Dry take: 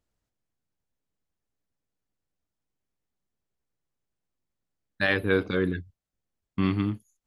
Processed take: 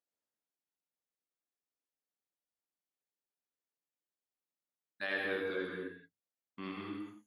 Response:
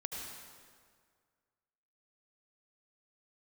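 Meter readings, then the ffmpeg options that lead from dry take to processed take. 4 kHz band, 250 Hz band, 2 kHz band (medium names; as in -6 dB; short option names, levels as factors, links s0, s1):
-10.0 dB, -15.0 dB, -9.0 dB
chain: -filter_complex "[0:a]highpass=330[s0];[1:a]atrim=start_sample=2205,afade=t=out:st=0.37:d=0.01,atrim=end_sample=16758,asetrate=48510,aresample=44100[s1];[s0][s1]afir=irnorm=-1:irlink=0,volume=0.355"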